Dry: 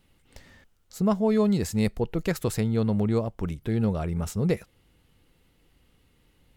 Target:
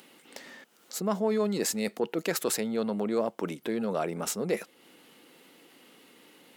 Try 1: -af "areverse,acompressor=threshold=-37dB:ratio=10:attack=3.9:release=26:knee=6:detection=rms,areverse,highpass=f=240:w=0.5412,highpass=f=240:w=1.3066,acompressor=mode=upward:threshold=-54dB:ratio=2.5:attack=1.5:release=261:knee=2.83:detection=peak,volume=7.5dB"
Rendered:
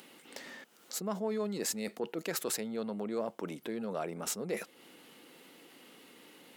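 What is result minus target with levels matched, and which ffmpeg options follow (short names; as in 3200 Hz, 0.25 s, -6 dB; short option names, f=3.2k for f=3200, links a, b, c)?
compressor: peak gain reduction +7 dB
-af "areverse,acompressor=threshold=-29dB:ratio=10:attack=3.9:release=26:knee=6:detection=rms,areverse,highpass=f=240:w=0.5412,highpass=f=240:w=1.3066,acompressor=mode=upward:threshold=-54dB:ratio=2.5:attack=1.5:release=261:knee=2.83:detection=peak,volume=7.5dB"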